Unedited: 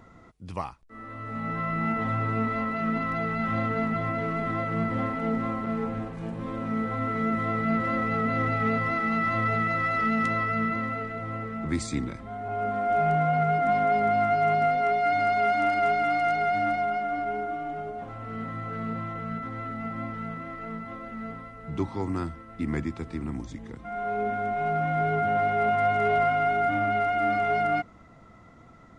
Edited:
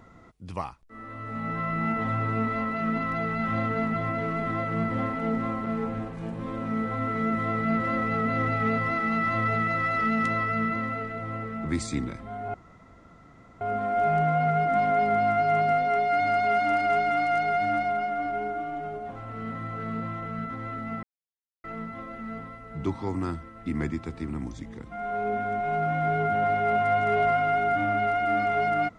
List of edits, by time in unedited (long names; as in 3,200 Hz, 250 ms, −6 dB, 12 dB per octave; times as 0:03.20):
0:12.54: splice in room tone 1.07 s
0:19.96–0:20.57: silence